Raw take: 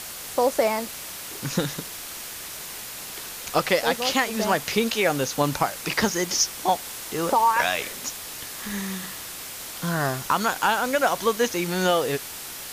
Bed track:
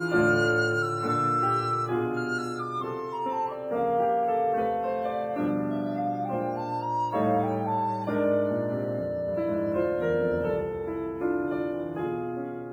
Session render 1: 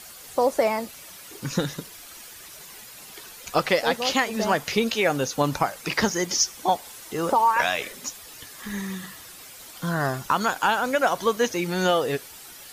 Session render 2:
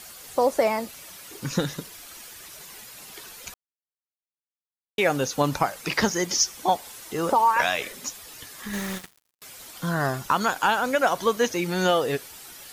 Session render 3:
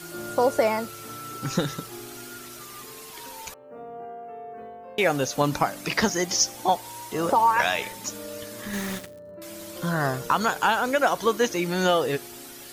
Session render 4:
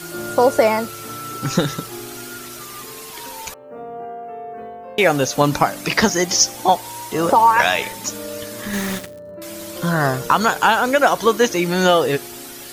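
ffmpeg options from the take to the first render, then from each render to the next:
-af "afftdn=nr=10:nf=-37"
-filter_complex "[0:a]asettb=1/sr,asplit=3[s0][s1][s2];[s0]atrim=end=8.734[s3];[s1]atrim=start=8.73:end=9.42,asetpts=PTS-STARTPTS,afade=t=in:d=0.004:c=qsin,afade=t=out:st=0.686:d=0.004:c=qsin,acrusher=bits=4:mix=0:aa=0.5[s4];[s2]atrim=start=9.416[s5];[s3][s4]acrossfade=d=0.004:c1=hsin:c2=qsin[s6];[s6][s5]acrossfade=d=0.004:c1=qsin:c2=hsin,asplit=3[s7][s8][s9];[s7]atrim=end=3.54,asetpts=PTS-STARTPTS,afade=t=out:st=3.536:d=0.004:c=hsin[s10];[s8]atrim=start=3.54:end=4.98,asetpts=PTS-STARTPTS,volume=0[s11];[s9]atrim=start=4.98,asetpts=PTS-STARTPTS,afade=t=in:d=0.004:c=hsin[s12];[s10][s11][s12]concat=n=3:v=0:a=1"
-filter_complex "[1:a]volume=0.2[s0];[0:a][s0]amix=inputs=2:normalize=0"
-af "volume=2.24"

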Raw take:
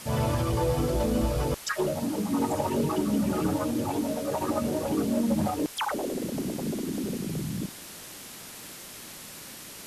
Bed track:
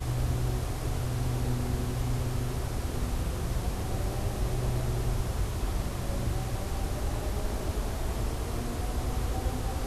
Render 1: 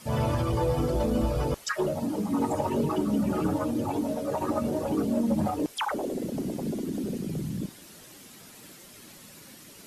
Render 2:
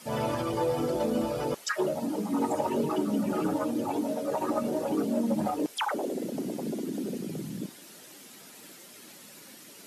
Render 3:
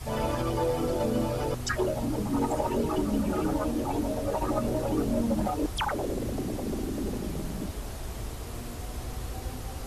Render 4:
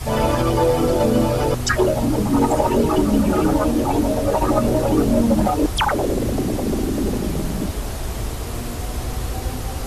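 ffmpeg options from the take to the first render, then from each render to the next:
-af "afftdn=nr=9:nf=-44"
-af "highpass=210,bandreject=f=1100:w=23"
-filter_complex "[1:a]volume=0.531[s0];[0:a][s0]amix=inputs=2:normalize=0"
-af "volume=3.35"

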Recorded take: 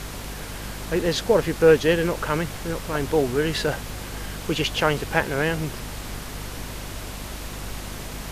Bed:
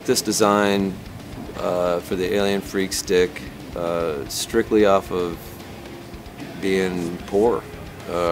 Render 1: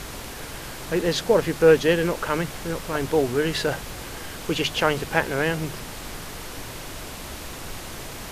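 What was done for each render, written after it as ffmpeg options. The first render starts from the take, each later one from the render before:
-af "bandreject=f=50:t=h:w=6,bandreject=f=100:t=h:w=6,bandreject=f=150:t=h:w=6,bandreject=f=200:t=h:w=6,bandreject=f=250:t=h:w=6"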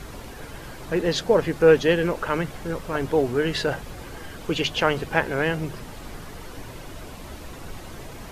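-af "afftdn=nr=9:nf=-37"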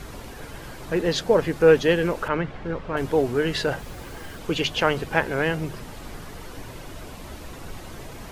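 -filter_complex "[0:a]asettb=1/sr,asplit=3[s0][s1][s2];[s0]atrim=end=2.284[s3];[s1]atrim=start=2.28:end=2.97,asetpts=PTS-STARTPTS,afade=t=in:d=0.004:c=qsin,afade=t=out:st=0.686:d=0.004:c=qsin,lowpass=3000[s4];[s2]atrim=start=2.966[s5];[s3][s4]acrossfade=d=0.004:c1=hsin:c2=qsin[s6];[s6][s5]acrossfade=d=0.004:c1=qsin:c2=hsin,asettb=1/sr,asplit=3[s7][s8][s9];[s7]atrim=end=3.794[s10];[s8]atrim=start=3.79:end=4.39,asetpts=PTS-STARTPTS,afade=t=in:d=0.004:c=qsin,afade=t=out:st=0.596:d=0.004:c=qsin,acrusher=bits=7:mix=0:aa=0.5[s11];[s9]atrim=start=4.386[s12];[s10][s11]acrossfade=d=0.004:c1=hsin:c2=qsin[s13];[s13][s12]acrossfade=d=0.004:c1=qsin:c2=hsin"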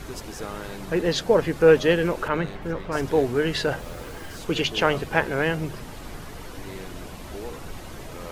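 -filter_complex "[1:a]volume=0.106[s0];[0:a][s0]amix=inputs=2:normalize=0"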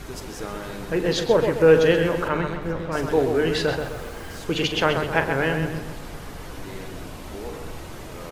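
-filter_complex "[0:a]asplit=2[s0][s1];[s1]adelay=44,volume=0.237[s2];[s0][s2]amix=inputs=2:normalize=0,asplit=2[s3][s4];[s4]adelay=130,lowpass=f=3200:p=1,volume=0.501,asplit=2[s5][s6];[s6]adelay=130,lowpass=f=3200:p=1,volume=0.48,asplit=2[s7][s8];[s8]adelay=130,lowpass=f=3200:p=1,volume=0.48,asplit=2[s9][s10];[s10]adelay=130,lowpass=f=3200:p=1,volume=0.48,asplit=2[s11][s12];[s12]adelay=130,lowpass=f=3200:p=1,volume=0.48,asplit=2[s13][s14];[s14]adelay=130,lowpass=f=3200:p=1,volume=0.48[s15];[s3][s5][s7][s9][s11][s13][s15]amix=inputs=7:normalize=0"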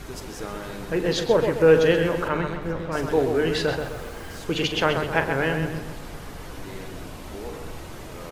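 -af "volume=0.891"

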